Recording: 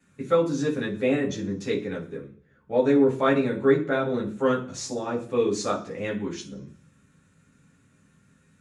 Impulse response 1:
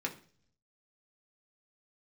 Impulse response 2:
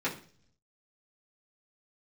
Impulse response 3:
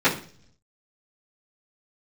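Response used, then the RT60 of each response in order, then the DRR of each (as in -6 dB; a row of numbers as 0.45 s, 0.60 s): 3; 0.45 s, 0.45 s, 0.45 s; 0.0 dB, -9.0 dB, -17.5 dB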